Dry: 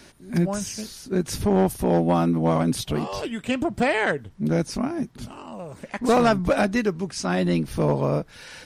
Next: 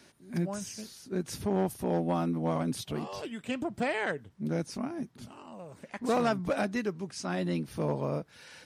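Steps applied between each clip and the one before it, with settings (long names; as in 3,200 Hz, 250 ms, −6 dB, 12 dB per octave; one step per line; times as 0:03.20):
high-pass filter 91 Hz 12 dB per octave
level −9 dB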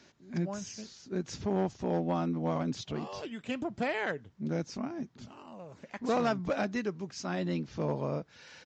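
downsampling to 16,000 Hz
level −1.5 dB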